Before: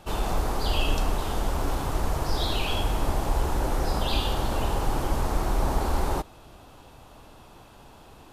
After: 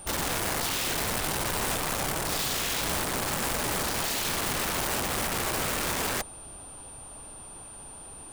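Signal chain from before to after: whistle 9.1 kHz -43 dBFS; integer overflow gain 24.5 dB

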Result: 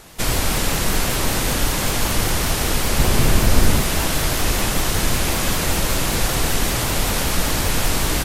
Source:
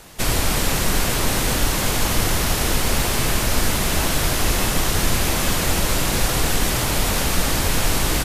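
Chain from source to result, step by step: 2.99–3.81 s: bass shelf 470 Hz +7 dB; vibrato with a chosen wave saw up 5.2 Hz, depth 100 cents

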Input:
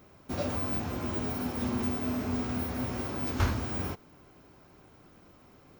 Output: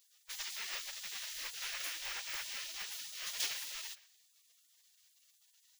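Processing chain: one-sided wavefolder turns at -22 dBFS; de-hum 98.95 Hz, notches 4; spectral gate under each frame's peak -30 dB weak; trim +8.5 dB

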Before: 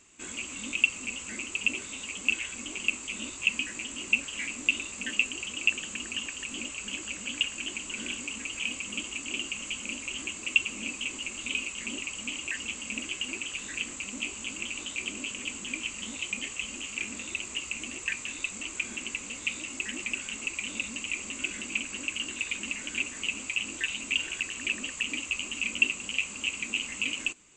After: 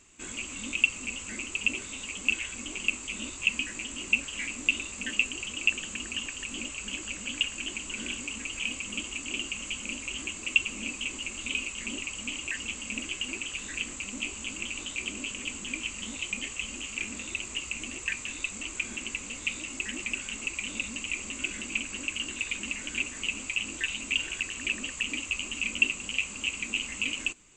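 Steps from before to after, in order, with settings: bass shelf 67 Hz +11 dB

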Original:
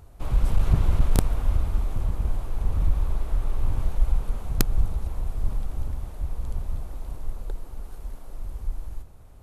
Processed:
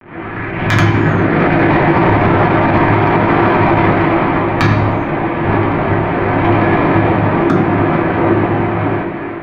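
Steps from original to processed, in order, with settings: tape start-up on the opening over 2.08 s; dynamic bell 550 Hz, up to -5 dB, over -53 dBFS, Q 1.4; level rider gain up to 14 dB; bit crusher 8-bit; mistuned SSB -190 Hz 210–2600 Hz; feedback comb 340 Hz, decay 0.18 s, harmonics odd, mix 70%; Chebyshev shaper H 7 -24 dB, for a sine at -31 dBFS; reverberation, pre-delay 3 ms, DRR -3.5 dB; loudness maximiser +35 dB; attacks held to a fixed rise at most 150 dB/s; trim -1 dB

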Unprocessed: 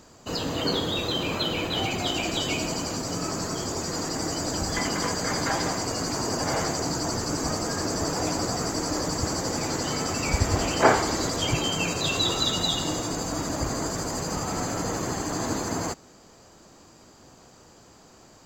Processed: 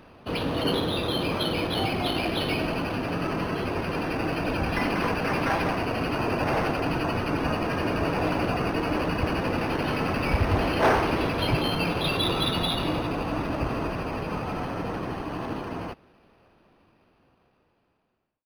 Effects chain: fade out at the end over 5.58 s; overload inside the chain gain 17.5 dB; decimation joined by straight lines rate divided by 6×; trim +2 dB

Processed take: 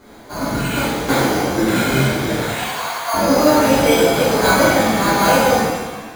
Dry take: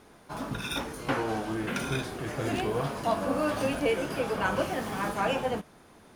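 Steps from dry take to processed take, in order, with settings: 1.13–1.54 s: ring modulator 27 Hz; 2.39–3.14 s: high-pass 850 Hz 24 dB/octave; careless resampling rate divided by 8×, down filtered, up hold; pitch-shifted reverb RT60 1.2 s, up +7 st, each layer -8 dB, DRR -9 dB; trim +5 dB

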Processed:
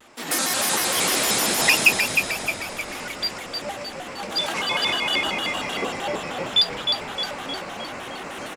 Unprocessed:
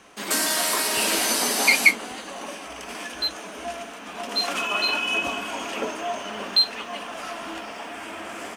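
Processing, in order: frequency-shifting echo 309 ms, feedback 53%, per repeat -61 Hz, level -5 dB; vibrato with a chosen wave square 6.5 Hz, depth 250 cents

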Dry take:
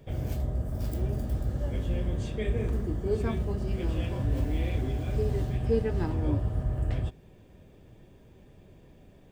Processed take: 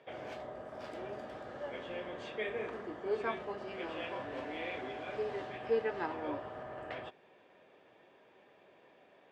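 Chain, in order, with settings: band-pass 690–2600 Hz; trim +4.5 dB

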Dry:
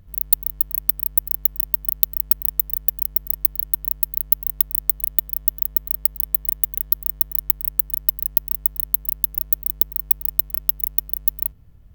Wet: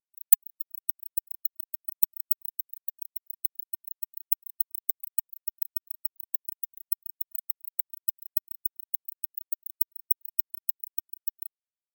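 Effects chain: LFO high-pass saw up 2.9 Hz 840–1700 Hz; spectral contrast expander 2.5:1

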